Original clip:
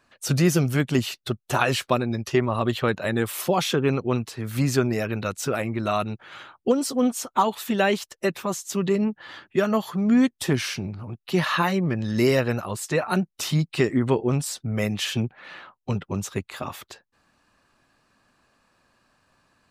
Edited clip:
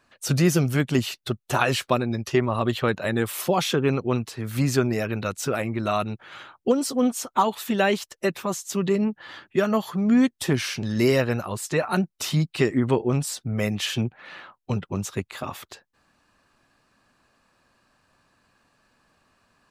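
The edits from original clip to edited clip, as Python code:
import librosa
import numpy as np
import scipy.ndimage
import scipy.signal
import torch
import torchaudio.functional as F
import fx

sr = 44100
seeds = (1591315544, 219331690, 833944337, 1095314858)

y = fx.edit(x, sr, fx.cut(start_s=10.83, length_s=1.19), tone=tone)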